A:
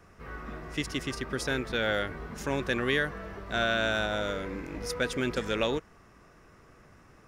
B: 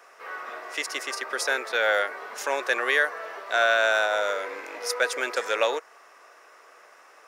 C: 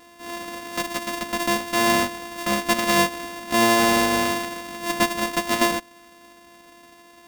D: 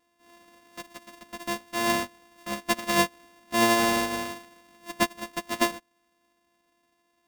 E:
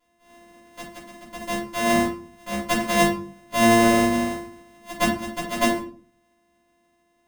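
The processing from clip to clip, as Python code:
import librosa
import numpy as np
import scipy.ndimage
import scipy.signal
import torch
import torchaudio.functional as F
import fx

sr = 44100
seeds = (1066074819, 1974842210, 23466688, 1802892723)

y1 = scipy.signal.sosfilt(scipy.signal.butter(4, 520.0, 'highpass', fs=sr, output='sos'), x)
y1 = fx.dynamic_eq(y1, sr, hz=3200.0, q=2.5, threshold_db=-49.0, ratio=4.0, max_db=-7)
y1 = y1 * 10.0 ** (8.0 / 20.0)
y2 = np.r_[np.sort(y1[:len(y1) // 128 * 128].reshape(-1, 128), axis=1).ravel(), y1[len(y1) // 128 * 128:]]
y2 = y2 + 0.71 * np.pad(y2, (int(4.0 * sr / 1000.0), 0))[:len(y2)]
y2 = y2 * 10.0 ** (3.0 / 20.0)
y3 = fx.upward_expand(y2, sr, threshold_db=-29.0, expansion=2.5)
y3 = y3 * 10.0 ** (-2.0 / 20.0)
y4 = fx.room_shoebox(y3, sr, seeds[0], volume_m3=290.0, walls='furnished', distance_m=5.0)
y4 = y4 * 10.0 ** (-4.5 / 20.0)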